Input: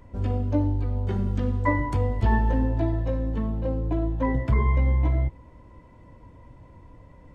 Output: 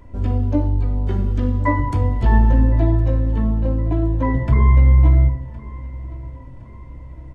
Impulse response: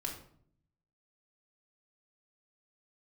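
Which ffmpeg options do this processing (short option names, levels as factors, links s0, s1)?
-filter_complex "[0:a]aecho=1:1:1064|2128|3192:0.1|0.046|0.0212,asplit=2[s0][s1];[1:a]atrim=start_sample=2205,lowshelf=f=230:g=7.5[s2];[s1][s2]afir=irnorm=-1:irlink=0,volume=0.501[s3];[s0][s3]amix=inputs=2:normalize=0"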